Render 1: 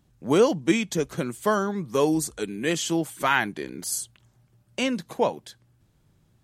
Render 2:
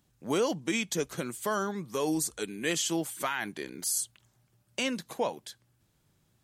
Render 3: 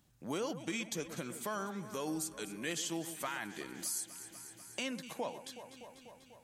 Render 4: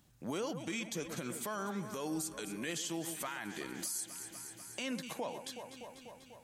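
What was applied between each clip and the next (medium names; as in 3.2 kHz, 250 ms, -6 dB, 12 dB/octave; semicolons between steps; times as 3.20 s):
tilt EQ +1.5 dB/octave; peak limiter -15.5 dBFS, peak gain reduction 9.5 dB; trim -3.5 dB
peaking EQ 420 Hz -4 dB 0.31 oct; echo whose repeats swap between lows and highs 123 ms, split 2 kHz, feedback 80%, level -13.5 dB; compression 1.5:1, threshold -49 dBFS, peak gain reduction 9 dB
peak limiter -32 dBFS, peak gain reduction 6.5 dB; trim +3 dB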